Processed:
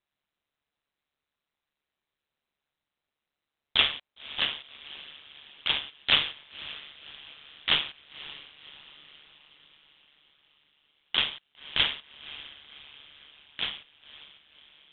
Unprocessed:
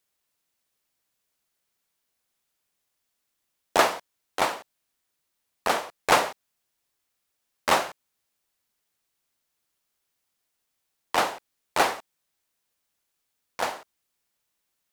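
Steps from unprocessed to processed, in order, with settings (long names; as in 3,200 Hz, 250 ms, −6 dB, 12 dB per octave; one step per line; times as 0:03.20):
voice inversion scrambler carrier 4,000 Hz
feedback delay with all-pass diffusion 550 ms, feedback 54%, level −16 dB
ring modulation 73 Hz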